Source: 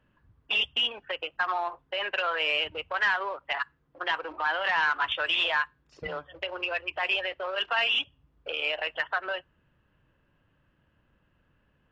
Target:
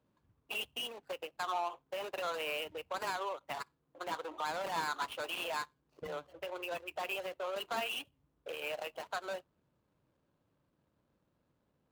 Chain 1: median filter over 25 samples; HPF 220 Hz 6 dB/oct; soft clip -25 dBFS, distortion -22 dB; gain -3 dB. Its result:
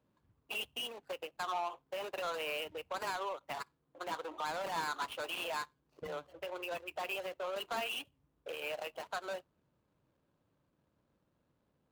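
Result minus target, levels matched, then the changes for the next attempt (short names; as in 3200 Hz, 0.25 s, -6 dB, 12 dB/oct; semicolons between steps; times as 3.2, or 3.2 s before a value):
soft clip: distortion +12 dB
change: soft clip -18 dBFS, distortion -34 dB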